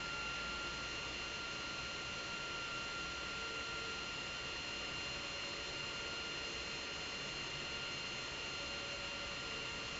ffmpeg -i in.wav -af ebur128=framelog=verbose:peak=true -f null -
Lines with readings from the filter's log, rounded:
Integrated loudness:
  I:         -41.5 LUFS
  Threshold: -51.5 LUFS
Loudness range:
  LRA:         0.2 LU
  Threshold: -61.5 LUFS
  LRA low:   -41.6 LUFS
  LRA high:  -41.4 LUFS
True peak:
  Peak:      -30.8 dBFS